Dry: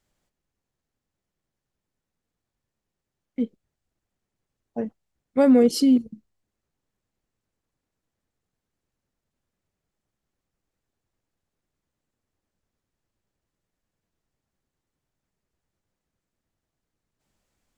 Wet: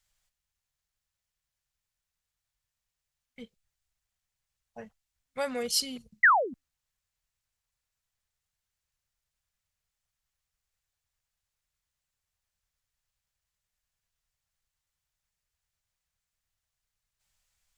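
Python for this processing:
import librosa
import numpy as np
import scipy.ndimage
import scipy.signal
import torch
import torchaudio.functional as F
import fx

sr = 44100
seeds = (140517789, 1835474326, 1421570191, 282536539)

y = fx.spec_paint(x, sr, seeds[0], shape='fall', start_s=6.23, length_s=0.31, low_hz=230.0, high_hz=2100.0, level_db=-15.0)
y = fx.tone_stack(y, sr, knobs='10-0-10')
y = F.gain(torch.from_numpy(y), 3.5).numpy()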